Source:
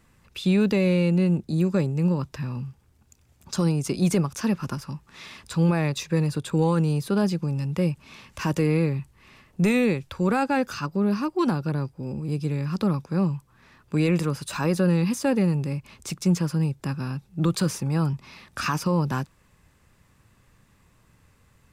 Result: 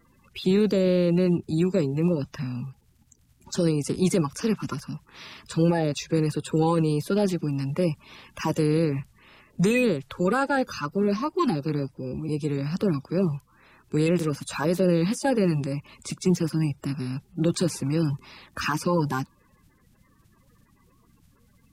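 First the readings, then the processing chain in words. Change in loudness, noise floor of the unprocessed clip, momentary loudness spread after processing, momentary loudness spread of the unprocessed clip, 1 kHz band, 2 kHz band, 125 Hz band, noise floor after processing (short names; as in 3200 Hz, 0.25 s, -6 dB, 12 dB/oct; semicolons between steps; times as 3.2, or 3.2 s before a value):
-0.5 dB, -61 dBFS, 11 LU, 11 LU, +0.5 dB, -0.5 dB, -2.5 dB, -62 dBFS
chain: bin magnitudes rounded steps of 30 dB; wow and flutter 21 cents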